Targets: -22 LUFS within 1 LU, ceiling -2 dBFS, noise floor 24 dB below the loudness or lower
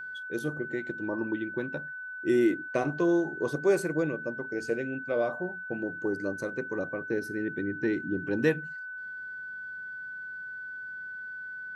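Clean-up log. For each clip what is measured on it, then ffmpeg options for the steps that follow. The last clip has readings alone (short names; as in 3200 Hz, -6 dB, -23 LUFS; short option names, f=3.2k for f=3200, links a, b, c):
steady tone 1500 Hz; tone level -37 dBFS; loudness -31.5 LUFS; peak -13.0 dBFS; loudness target -22.0 LUFS
-> -af "bandreject=f=1.5k:w=30"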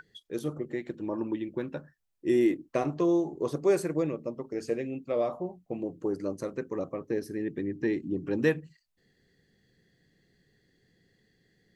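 steady tone none; loudness -31.0 LUFS; peak -13.5 dBFS; loudness target -22.0 LUFS
-> -af "volume=9dB"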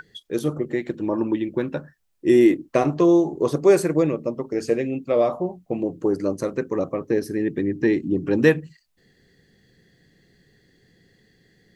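loudness -22.0 LUFS; peak -4.5 dBFS; noise floor -65 dBFS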